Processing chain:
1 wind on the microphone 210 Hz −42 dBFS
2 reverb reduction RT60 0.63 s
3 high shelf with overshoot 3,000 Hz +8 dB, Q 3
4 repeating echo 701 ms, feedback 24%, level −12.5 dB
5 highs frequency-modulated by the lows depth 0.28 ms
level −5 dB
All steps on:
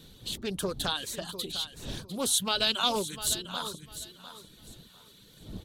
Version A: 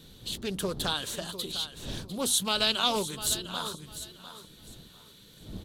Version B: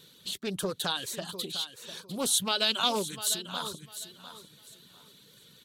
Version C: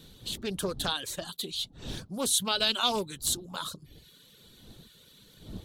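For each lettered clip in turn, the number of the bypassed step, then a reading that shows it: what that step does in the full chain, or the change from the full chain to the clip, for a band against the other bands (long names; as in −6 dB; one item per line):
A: 2, change in momentary loudness spread +2 LU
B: 1, 125 Hz band −2.0 dB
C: 4, change in momentary loudness spread −6 LU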